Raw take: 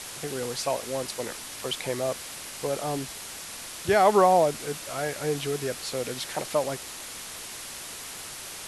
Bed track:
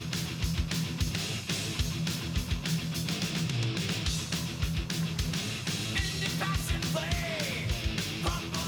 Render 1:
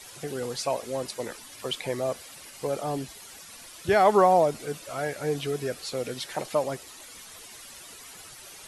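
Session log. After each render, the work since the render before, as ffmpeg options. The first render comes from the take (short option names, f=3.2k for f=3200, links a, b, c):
-af "afftdn=nr=11:nf=-40"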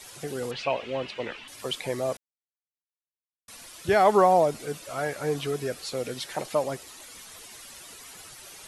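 -filter_complex "[0:a]asettb=1/sr,asplit=3[a][b][c];[a]atrim=end=0.514[d];[b]atrim=start=0.51:end=1.48,asetpts=PTS-STARTPTS,afade=t=in:d=0.004:c=qsin,afade=t=out:st=0.966:d=0.004:c=qsin,lowpass=f=2.8k:t=q:w=3.9[e];[c]atrim=start=1.476[f];[d][e]acrossfade=d=0.004:c1=hsin:c2=qsin[g];[g][f]acrossfade=d=0.004:c1=qsin:c2=hsin,asettb=1/sr,asplit=3[h][i][j];[h]atrim=end=4.974[k];[i]atrim=start=4.97:end=5.55,asetpts=PTS-STARTPTS,afade=t=in:d=0.004:c=qsin,afade=t=out:st=0.576:d=0.004:c=qsin,equalizer=f=1.1k:w=2.2:g=5.5[l];[j]atrim=start=5.546[m];[k][l]acrossfade=d=0.004:c1=hsin:c2=qsin[n];[n][m]acrossfade=d=0.004:c1=qsin:c2=hsin,asplit=3[o][p][q];[o]atrim=end=2.17,asetpts=PTS-STARTPTS,afade=t=out:st=2.166:d=0.004:c=hsin[r];[p]atrim=start=2.17:end=3.48,asetpts=PTS-STARTPTS,volume=0[s];[q]atrim=start=3.48,asetpts=PTS-STARTPTS,afade=t=in:d=0.004:c=hsin[t];[r][s][t]concat=n=3:v=0:a=1"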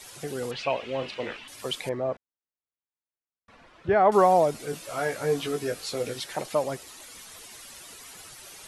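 -filter_complex "[0:a]asettb=1/sr,asplit=3[a][b][c];[a]atrim=end=0.954[d];[b]atrim=start=0.95:end=1.37,asetpts=PTS-STARTPTS,afade=t=in:d=0.004:c=qsin,afade=t=out:st=0.416:d=0.004:c=qsin,asplit=2[e][f];[f]adelay=37,volume=-9.5dB[g];[e][g]amix=inputs=2:normalize=0,atrim=end_sample=18522[h];[c]atrim=start=1.366[i];[d][h]acrossfade=d=0.004:c1=hsin:c2=qsin[j];[j][i]acrossfade=d=0.004:c1=qsin:c2=hsin,asettb=1/sr,asplit=3[k][l][m];[k]atrim=end=1.894[n];[l]atrim=start=1.89:end=4.12,asetpts=PTS-STARTPTS,afade=t=in:d=0.004:c=qsin,afade=t=out:st=2.226:d=0.004:c=qsin,lowpass=1.7k[o];[m]atrim=start=4.116[p];[n][o]acrossfade=d=0.004:c1=hsin:c2=qsin[q];[q][p]acrossfade=d=0.004:c1=qsin:c2=hsin,asettb=1/sr,asplit=3[r][s][t];[r]atrim=end=4.714[u];[s]atrim=start=4.71:end=6.2,asetpts=PTS-STARTPTS,afade=t=in:d=0.004:c=qsin,afade=t=out:st=1.486:d=0.004:c=qsin,asplit=2[v][w];[w]adelay=18,volume=-4.5dB[x];[v][x]amix=inputs=2:normalize=0,atrim=end_sample=65709[y];[t]atrim=start=6.196[z];[u][y]acrossfade=d=0.004:c1=hsin:c2=qsin[aa];[aa][z]acrossfade=d=0.004:c1=qsin:c2=hsin"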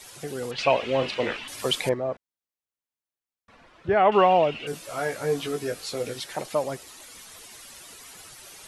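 -filter_complex "[0:a]asettb=1/sr,asplit=3[a][b][c];[a]atrim=end=0.584[d];[b]atrim=start=0.58:end=1.94,asetpts=PTS-STARTPTS,afade=t=in:d=0.004:c=qsin,afade=t=out:st=1.356:d=0.004:c=qsin,acontrast=66[e];[c]atrim=start=1.936[f];[d][e]acrossfade=d=0.004:c1=hsin:c2=qsin[g];[g][f]acrossfade=d=0.004:c1=qsin:c2=hsin,asettb=1/sr,asplit=3[h][i][j];[h]atrim=end=3.974[k];[i]atrim=start=3.97:end=4.67,asetpts=PTS-STARTPTS,afade=t=in:d=0.004:c=qsin,afade=t=out:st=0.696:d=0.004:c=qsin,lowpass=f=2.8k:t=q:w=13[l];[j]atrim=start=4.666[m];[k][l]acrossfade=d=0.004:c1=hsin:c2=qsin[n];[n][m]acrossfade=d=0.004:c1=qsin:c2=hsin"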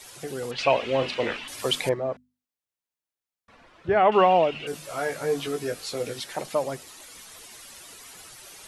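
-af "bandreject=f=50:t=h:w=6,bandreject=f=100:t=h:w=6,bandreject=f=150:t=h:w=6,bandreject=f=200:t=h:w=6,bandreject=f=250:t=h:w=6"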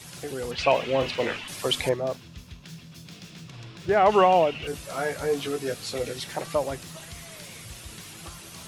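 -filter_complex "[1:a]volume=-12.5dB[a];[0:a][a]amix=inputs=2:normalize=0"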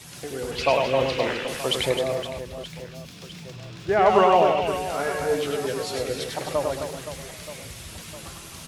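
-af "aecho=1:1:100|260|516|925.6|1581:0.631|0.398|0.251|0.158|0.1"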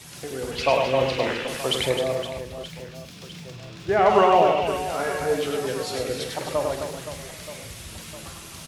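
-filter_complex "[0:a]asplit=2[a][b];[b]adelay=46,volume=-11dB[c];[a][c]amix=inputs=2:normalize=0"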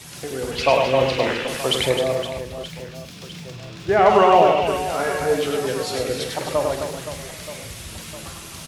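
-af "volume=3.5dB,alimiter=limit=-2dB:level=0:latency=1"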